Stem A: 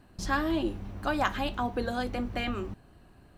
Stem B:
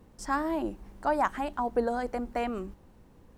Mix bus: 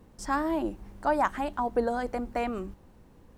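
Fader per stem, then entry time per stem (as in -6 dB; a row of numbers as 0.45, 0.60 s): -19.0, +1.0 dB; 0.00, 0.00 s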